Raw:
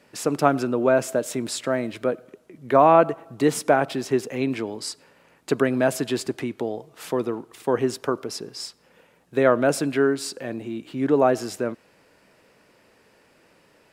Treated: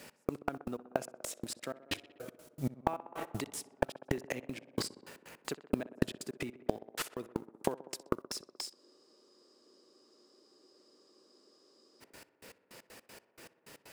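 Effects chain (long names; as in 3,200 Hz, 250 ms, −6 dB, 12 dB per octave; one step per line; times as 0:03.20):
mu-law and A-law mismatch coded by A
high-shelf EQ 4,100 Hz +10.5 dB
downward compressor 6 to 1, threshold −22 dBFS, peak gain reduction 12 dB
gate pattern "x..x.x.x.." 157 BPM −60 dB
gate with flip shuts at −26 dBFS, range −24 dB
tape delay 63 ms, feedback 86%, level −16.5 dB, low-pass 2,200 Hz
frozen spectrum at 0:08.76, 3.26 s
slew-rate limiting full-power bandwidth 31 Hz
level +11.5 dB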